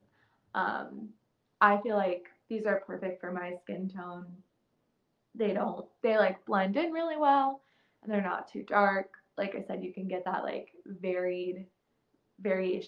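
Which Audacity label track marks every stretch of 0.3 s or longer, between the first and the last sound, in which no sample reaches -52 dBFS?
1.120000	1.610000	silence
4.410000	5.350000	silence
7.570000	8.030000	silence
11.650000	12.390000	silence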